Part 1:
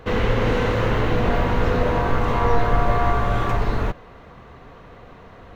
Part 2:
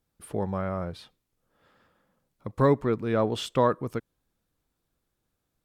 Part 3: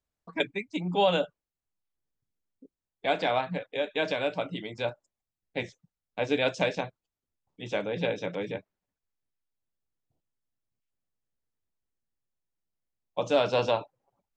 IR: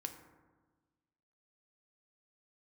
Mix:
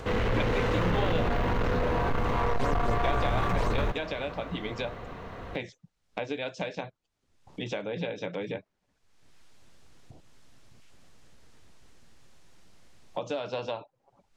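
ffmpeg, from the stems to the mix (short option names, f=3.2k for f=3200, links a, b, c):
-filter_complex "[0:a]asoftclip=type=tanh:threshold=-17.5dB,alimiter=level_in=0.5dB:limit=-24dB:level=0:latency=1:release=26,volume=-0.5dB,volume=2.5dB[a];[1:a]acrusher=samples=11:mix=1:aa=0.000001:lfo=1:lforange=11:lforate=4,volume=-10.5dB[b];[2:a]acompressor=mode=upward:threshold=-28dB:ratio=2.5,volume=1dB[c];[b][c]amix=inputs=2:normalize=0,lowpass=6.9k,acompressor=threshold=-29dB:ratio=12,volume=0dB[d];[a][d]amix=inputs=2:normalize=0"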